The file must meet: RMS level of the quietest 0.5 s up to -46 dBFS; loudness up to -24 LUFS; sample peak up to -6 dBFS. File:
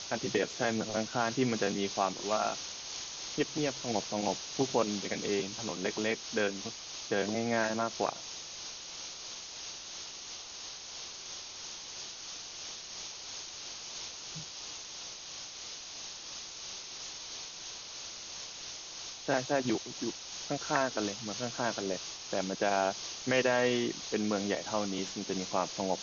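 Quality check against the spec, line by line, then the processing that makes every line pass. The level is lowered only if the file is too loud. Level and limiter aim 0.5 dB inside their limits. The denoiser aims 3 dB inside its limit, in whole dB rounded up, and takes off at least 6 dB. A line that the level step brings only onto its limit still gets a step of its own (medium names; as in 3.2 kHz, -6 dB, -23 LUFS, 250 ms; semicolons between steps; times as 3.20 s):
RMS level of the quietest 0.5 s -45 dBFS: fail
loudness -34.5 LUFS: pass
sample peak -14.0 dBFS: pass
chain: noise reduction 6 dB, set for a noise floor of -45 dBFS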